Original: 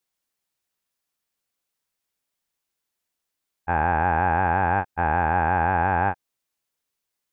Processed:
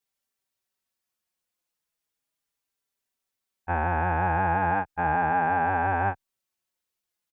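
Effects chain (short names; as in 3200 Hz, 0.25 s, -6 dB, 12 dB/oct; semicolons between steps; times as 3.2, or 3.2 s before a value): endless flanger 4.6 ms -0.36 Hz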